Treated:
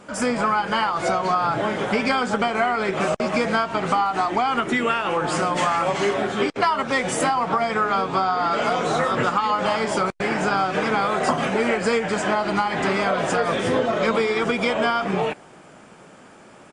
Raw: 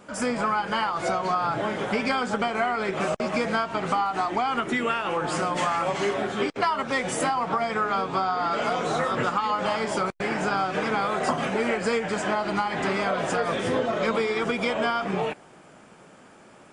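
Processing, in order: downsampling 22050 Hz; gain +4 dB

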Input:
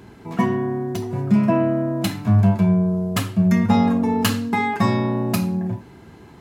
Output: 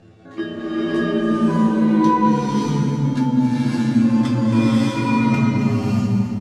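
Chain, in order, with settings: gliding pitch shift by +9.5 st ending unshifted; Bessel low-pass 6300 Hz, order 4; tone controls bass +13 dB, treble +2 dB; compressor, threshold -15 dBFS, peak gain reduction 13 dB; resonator 110 Hz, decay 0.22 s, harmonics all, mix 90%; feedback echo 0.273 s, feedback 51%, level -10 dB; bloom reverb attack 0.62 s, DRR -9.5 dB

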